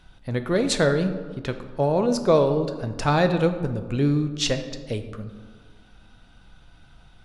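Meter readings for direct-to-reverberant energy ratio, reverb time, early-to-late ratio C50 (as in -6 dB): 7.5 dB, 1.6 s, 10.0 dB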